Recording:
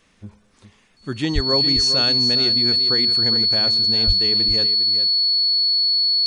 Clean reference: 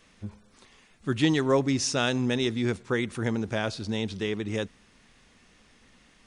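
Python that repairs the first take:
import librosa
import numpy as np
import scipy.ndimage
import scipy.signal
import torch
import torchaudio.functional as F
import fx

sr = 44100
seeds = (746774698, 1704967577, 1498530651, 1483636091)

y = fx.notch(x, sr, hz=4400.0, q=30.0)
y = fx.fix_deplosive(y, sr, at_s=(1.34, 4.06))
y = fx.fix_echo_inverse(y, sr, delay_ms=407, level_db=-10.5)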